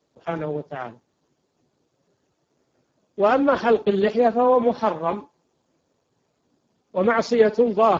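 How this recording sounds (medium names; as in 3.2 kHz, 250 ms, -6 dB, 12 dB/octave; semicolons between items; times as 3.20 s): a quantiser's noise floor 12-bit, dither triangular; Speex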